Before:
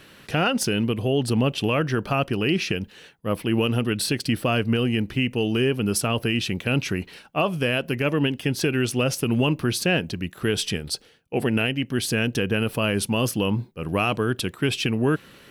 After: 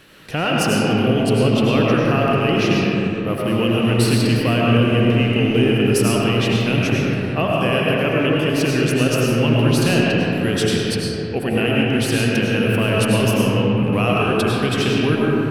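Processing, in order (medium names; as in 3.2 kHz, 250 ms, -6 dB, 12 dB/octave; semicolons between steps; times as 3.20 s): rattle on loud lows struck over -24 dBFS, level -28 dBFS; reverberation RT60 3.6 s, pre-delay 60 ms, DRR -4.5 dB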